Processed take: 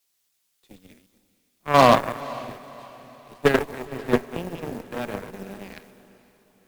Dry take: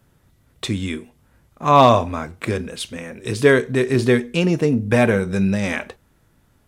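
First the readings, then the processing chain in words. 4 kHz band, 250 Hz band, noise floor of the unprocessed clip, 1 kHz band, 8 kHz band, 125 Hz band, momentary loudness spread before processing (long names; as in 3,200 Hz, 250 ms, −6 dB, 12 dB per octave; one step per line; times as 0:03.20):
−4.5 dB, −9.0 dB, −60 dBFS, −3.5 dB, −6.5 dB, −11.5 dB, 16 LU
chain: feedback delay that plays each chunk backwards 118 ms, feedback 41%, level −5 dB
high-pass filter 150 Hz 24 dB per octave
high-shelf EQ 3,300 Hz −11 dB
in parallel at −2 dB: output level in coarse steps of 12 dB
on the sum: bit-depth reduction 6 bits, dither triangular
harmonic generator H 3 −12 dB, 4 −20 dB, 7 −35 dB, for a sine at 0 dBFS
on a send: feedback delay with all-pass diffusion 512 ms, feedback 55%, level −14 dB
on the sum: multiband upward and downward expander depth 40%
level −9.5 dB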